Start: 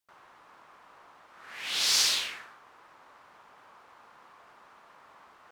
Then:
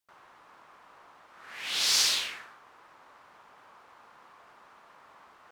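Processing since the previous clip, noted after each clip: no audible change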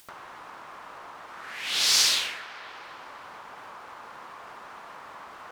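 feedback echo behind a band-pass 255 ms, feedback 47%, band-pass 940 Hz, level -9 dB; upward compressor, threshold -38 dBFS; trim +3.5 dB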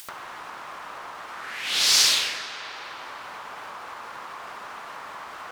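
on a send at -10.5 dB: reverberation RT60 2.4 s, pre-delay 25 ms; on the sum: tape noise reduction on one side only encoder only; trim +2.5 dB

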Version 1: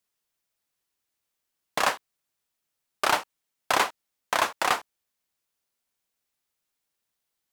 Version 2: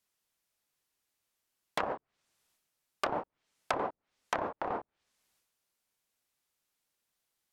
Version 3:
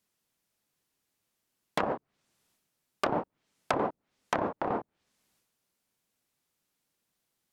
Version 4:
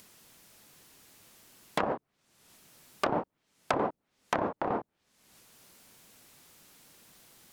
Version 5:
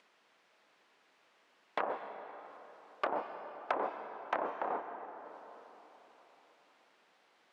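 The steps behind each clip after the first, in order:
transient shaper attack -5 dB, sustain +7 dB; peak limiter -11 dBFS, peak gain reduction 6 dB; low-pass that closes with the level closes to 580 Hz, closed at -26 dBFS
peaking EQ 190 Hz +8.5 dB 2.3 oct; trim +1.5 dB
upward compressor, threshold -39 dBFS
band-pass 480–2500 Hz; plate-style reverb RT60 4.1 s, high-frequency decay 0.6×, pre-delay 115 ms, DRR 8 dB; trim -3.5 dB

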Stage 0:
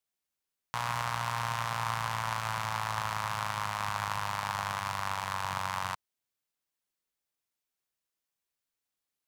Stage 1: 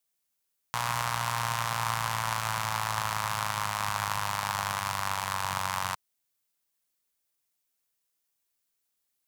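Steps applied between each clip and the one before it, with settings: treble shelf 5.8 kHz +8.5 dB; trim +2 dB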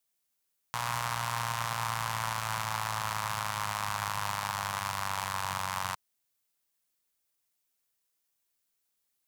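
peak limiter -14.5 dBFS, peak gain reduction 5.5 dB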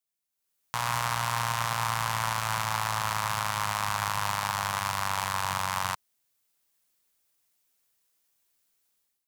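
level rider gain up to 14 dB; trim -8 dB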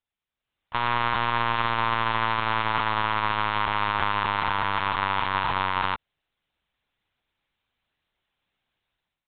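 LPC vocoder at 8 kHz pitch kept; trim +5 dB

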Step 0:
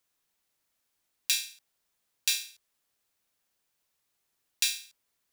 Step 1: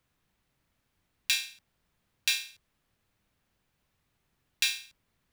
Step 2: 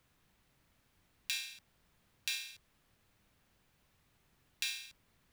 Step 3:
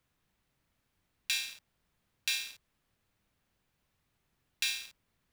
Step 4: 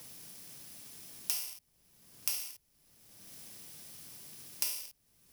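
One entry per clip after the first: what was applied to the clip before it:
tone controls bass +14 dB, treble -11 dB; trim +6 dB
peak limiter -19 dBFS, peak gain reduction 11 dB; compression 6:1, threshold -39 dBFS, peak gain reduction 11.5 dB; trim +4 dB
waveshaping leveller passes 2; trim -2 dB
bit-reversed sample order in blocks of 32 samples; three bands compressed up and down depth 100%; trim +1 dB

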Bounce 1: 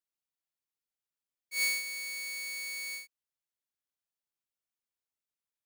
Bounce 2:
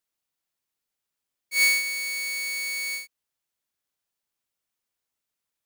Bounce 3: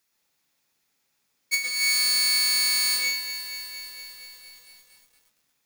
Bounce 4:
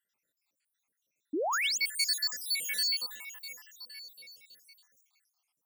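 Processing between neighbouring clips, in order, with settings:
dynamic bell 1.8 kHz, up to +3 dB, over -41 dBFS, Q 1.1; trim +8 dB
compressor with a negative ratio -30 dBFS, ratio -1; reverberation RT60 0.40 s, pre-delay 109 ms, DRR 0 dB; bit-crushed delay 233 ms, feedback 80%, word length 9-bit, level -10.5 dB; trim +7.5 dB
random holes in the spectrogram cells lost 77%; high-pass 140 Hz 6 dB/octave; painted sound rise, 1.33–1.78 s, 270–7400 Hz -27 dBFS; trim -3.5 dB

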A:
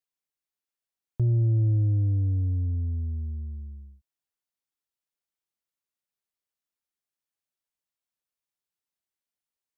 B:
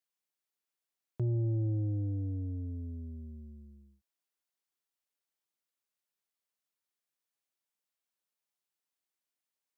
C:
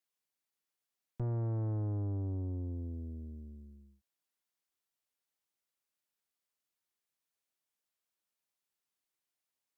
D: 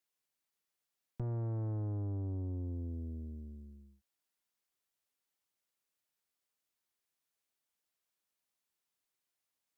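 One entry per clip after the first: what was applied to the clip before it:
Bessel high-pass 210 Hz, order 2
valve stage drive 36 dB, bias 0.7; trim +4 dB
compression, threshold -36 dBFS, peak gain reduction 4 dB; trim +1 dB

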